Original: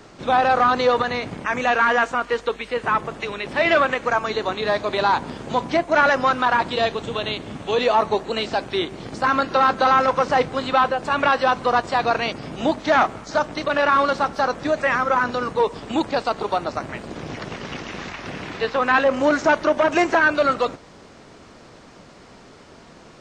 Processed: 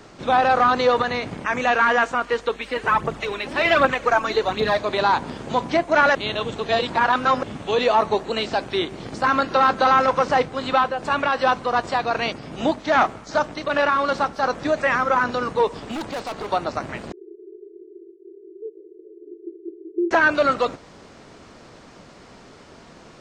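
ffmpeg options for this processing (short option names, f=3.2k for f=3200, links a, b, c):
-filter_complex "[0:a]asplit=3[a][b][c];[a]afade=t=out:st=2.61:d=0.02[d];[b]aphaser=in_gain=1:out_gain=1:delay=3.9:decay=0.53:speed=1.3:type=triangular,afade=t=in:st=2.61:d=0.02,afade=t=out:st=4.79:d=0.02[e];[c]afade=t=in:st=4.79:d=0.02[f];[d][e][f]amix=inputs=3:normalize=0,asettb=1/sr,asplit=3[g][h][i];[g]atrim=end=10.334[j];[h]atrim=start=10.33:end=14.43,asetpts=PTS-STARTPTS,afade=t=in:d=0.004:c=qsin,afade=t=out:st=4.096:d=0.004:c=qsin,tremolo=f=2.6:d=0.35[k];[i]atrim=start=14.426[l];[j][k]acrossfade=d=0.004:c1=hsin:c2=qsin[m];[m][l]acrossfade=d=0.004:c1=qsin:c2=hsin,asettb=1/sr,asplit=3[n][o][p];[n]atrim=end=15.674[q];[o]atrim=start=15.67:end=16.51,asetpts=PTS-STARTPTS,afade=t=in:d=0.004:c=qsin,afade=t=out:st=0.836:d=0.004:c=qsin,asoftclip=type=hard:threshold=-26dB[r];[p]atrim=start=16.506[s];[q][r]acrossfade=d=0.004:c1=hsin:c2=qsin[t];[t][s]acrossfade=d=0.004:c1=qsin:c2=hsin,asettb=1/sr,asplit=3[u][v][w];[u]atrim=end=17.124[x];[v]atrim=start=17.12:end=20.11,asetpts=PTS-STARTPTS,afade=t=in:d=0.004:c=qsin,afade=t=out:st=2.986:d=0.004:c=qsin,asuperpass=centerf=380:order=12:qfactor=3.6[y];[w]atrim=start=20.106[z];[x][y]acrossfade=d=0.004:c1=hsin:c2=qsin[aa];[aa][z]acrossfade=d=0.004:c1=qsin:c2=hsin,asplit=3[ab][ac][ad];[ab]atrim=end=6.152[ae];[ac]atrim=start=6.148:end=7.432,asetpts=PTS-STARTPTS,areverse[af];[ad]atrim=start=7.428[ag];[ae][af]acrossfade=d=0.004:c1=hsin:c2=hsin[ah];[ah][ag]acrossfade=d=0.004:c1=hsin:c2=hsin"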